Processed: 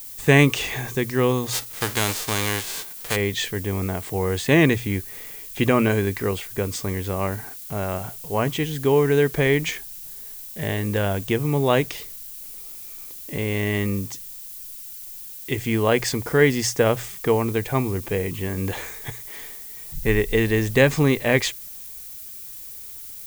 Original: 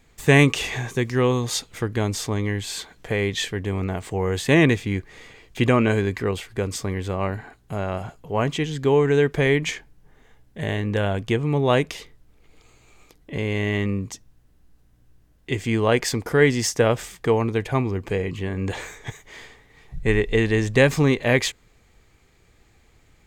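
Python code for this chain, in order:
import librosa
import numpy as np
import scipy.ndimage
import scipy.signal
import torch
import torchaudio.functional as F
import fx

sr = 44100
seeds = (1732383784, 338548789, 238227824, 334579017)

y = fx.envelope_flatten(x, sr, power=0.3, at=(1.52, 3.15), fade=0.02)
y = fx.dmg_noise_colour(y, sr, seeds[0], colour='violet', level_db=-38.0)
y = fx.hum_notches(y, sr, base_hz=60, count=2)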